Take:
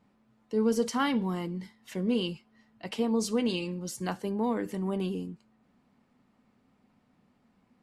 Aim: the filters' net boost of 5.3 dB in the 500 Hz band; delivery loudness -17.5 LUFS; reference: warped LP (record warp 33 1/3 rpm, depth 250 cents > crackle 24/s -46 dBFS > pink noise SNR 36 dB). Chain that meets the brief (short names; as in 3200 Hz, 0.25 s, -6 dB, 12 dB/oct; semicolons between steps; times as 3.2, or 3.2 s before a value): bell 500 Hz +6 dB; record warp 33 1/3 rpm, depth 250 cents; crackle 24/s -46 dBFS; pink noise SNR 36 dB; gain +11 dB